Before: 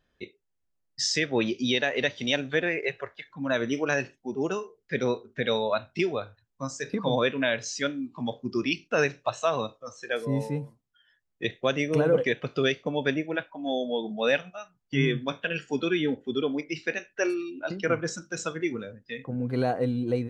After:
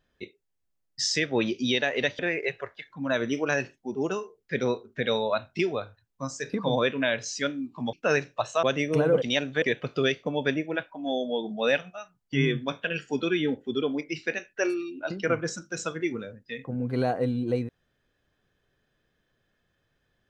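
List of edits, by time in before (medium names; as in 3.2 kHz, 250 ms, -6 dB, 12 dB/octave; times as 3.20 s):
2.19–2.59 s: move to 12.22 s
8.33–8.81 s: delete
9.51–11.63 s: delete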